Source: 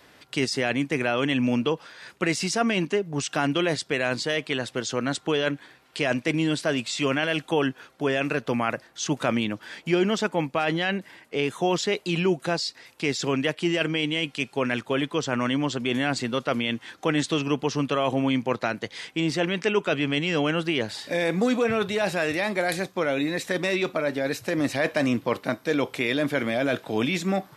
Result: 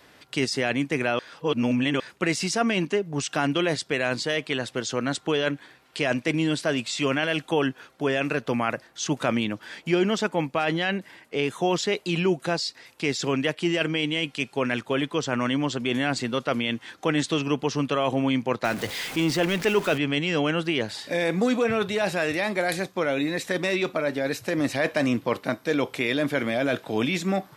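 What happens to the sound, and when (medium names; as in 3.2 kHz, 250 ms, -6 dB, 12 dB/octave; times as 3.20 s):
1.19–2.00 s: reverse
18.64–19.98 s: jump at every zero crossing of -30.5 dBFS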